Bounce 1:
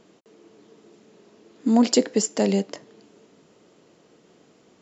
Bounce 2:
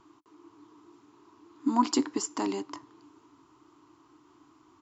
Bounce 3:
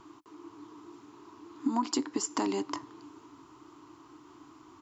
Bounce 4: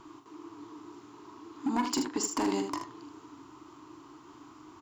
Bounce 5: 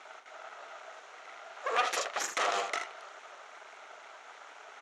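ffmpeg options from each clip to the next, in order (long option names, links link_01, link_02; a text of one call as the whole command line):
ffmpeg -i in.wav -af "firequalizer=gain_entry='entry(120,0);entry(190,-23);entry(300,5);entry(500,-25);entry(1000,9);entry(1700,-8)':delay=0.05:min_phase=1" out.wav
ffmpeg -i in.wav -af "acompressor=threshold=-33dB:ratio=5,volume=6dB" out.wav
ffmpeg -i in.wav -af "asoftclip=type=hard:threshold=-26dB,aecho=1:1:42|78:0.355|0.376,volume=1.5dB" out.wav
ffmpeg -i in.wav -af "aeval=exprs='abs(val(0))':channel_layout=same,highpass=frequency=420:width=0.5412,highpass=frequency=420:width=1.3066,equalizer=frequency=580:width_type=q:width=4:gain=-10,equalizer=frequency=4800:width_type=q:width=4:gain=-8,equalizer=frequency=8000:width_type=q:width=4:gain=-8,lowpass=frequency=8400:width=0.5412,lowpass=frequency=8400:width=1.3066,volume=8.5dB" out.wav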